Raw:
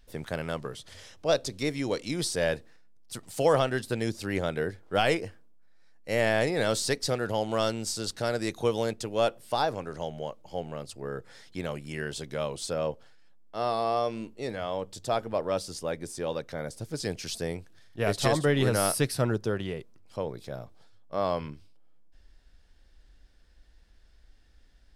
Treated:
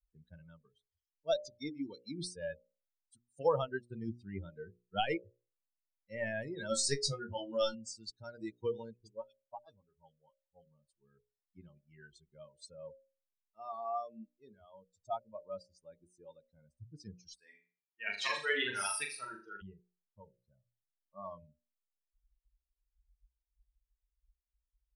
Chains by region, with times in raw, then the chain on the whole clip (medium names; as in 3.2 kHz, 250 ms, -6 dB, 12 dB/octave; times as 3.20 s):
6.69–7.75 s: treble shelf 4.9 kHz +5 dB + band-stop 1.1 kHz + flutter echo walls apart 3.7 m, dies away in 0.33 s
8.91–10.66 s: phase dispersion highs, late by 64 ms, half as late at 2.6 kHz + transformer saturation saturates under 590 Hz
17.35–19.62 s: high-pass 650 Hz 6 dB/octave + peaking EQ 2.2 kHz +6.5 dB 1.3 oct + flutter echo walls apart 6.8 m, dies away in 1.1 s
whole clip: expander on every frequency bin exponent 3; elliptic low-pass 9.7 kHz; hum notches 60/120/180/240/300/360/420/480/540/600 Hz; trim -1.5 dB